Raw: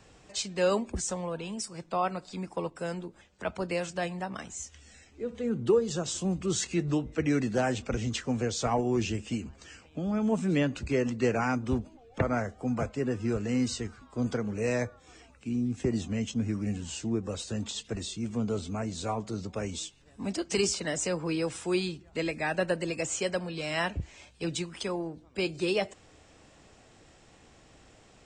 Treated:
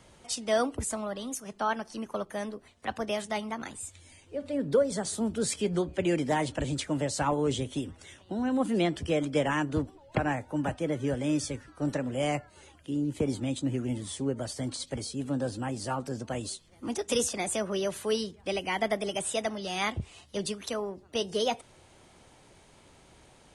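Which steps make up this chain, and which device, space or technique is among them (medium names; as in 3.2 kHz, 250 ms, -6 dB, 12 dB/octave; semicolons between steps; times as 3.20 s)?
nightcore (tape speed +20%)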